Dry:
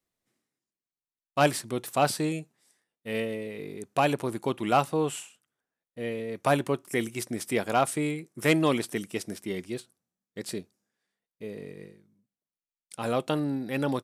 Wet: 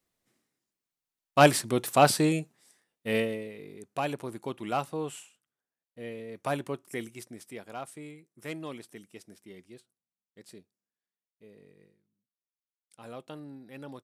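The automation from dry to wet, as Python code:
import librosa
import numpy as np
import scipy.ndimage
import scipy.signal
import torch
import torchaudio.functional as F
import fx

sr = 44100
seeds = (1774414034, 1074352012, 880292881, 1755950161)

y = fx.gain(x, sr, db=fx.line((3.14, 4.0), (3.6, -7.0), (6.92, -7.0), (7.58, -15.5)))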